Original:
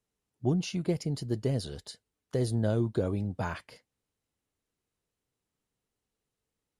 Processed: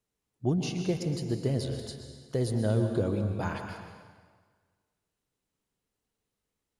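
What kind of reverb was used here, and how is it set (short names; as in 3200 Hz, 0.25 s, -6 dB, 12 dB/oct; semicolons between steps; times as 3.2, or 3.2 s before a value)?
plate-style reverb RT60 1.6 s, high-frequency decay 0.85×, pre-delay 0.105 s, DRR 5 dB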